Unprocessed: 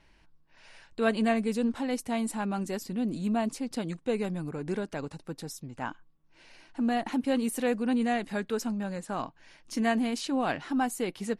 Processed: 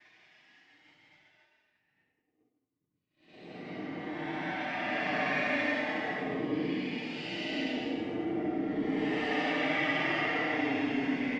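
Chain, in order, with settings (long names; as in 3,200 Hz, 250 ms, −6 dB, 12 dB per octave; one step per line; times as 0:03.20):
lower of the sound and its delayed copy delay 3.3 ms
random phases in short frames
half-wave rectification
loudspeaker in its box 240–4,600 Hz, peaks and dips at 270 Hz +9 dB, 540 Hz −6 dB, 980 Hz −8 dB, 1,400 Hz −8 dB, 2,000 Hz +9 dB, 4,100 Hz −9 dB
transient designer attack −4 dB, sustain +7 dB
comb filter 6.6 ms, depth 74%
extreme stretch with random phases 20×, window 0.05 s, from 0:00.81
downward expander −56 dBFS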